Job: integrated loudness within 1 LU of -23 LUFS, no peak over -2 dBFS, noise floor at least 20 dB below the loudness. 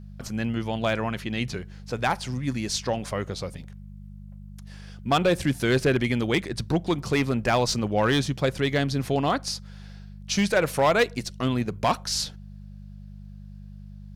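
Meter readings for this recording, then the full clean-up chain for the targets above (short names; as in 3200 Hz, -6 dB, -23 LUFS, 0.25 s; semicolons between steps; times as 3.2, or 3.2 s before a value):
clipped 0.6%; flat tops at -14.5 dBFS; hum 50 Hz; harmonics up to 200 Hz; hum level -39 dBFS; loudness -25.5 LUFS; peak -14.5 dBFS; loudness target -23.0 LUFS
-> clip repair -14.5 dBFS; de-hum 50 Hz, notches 4; gain +2.5 dB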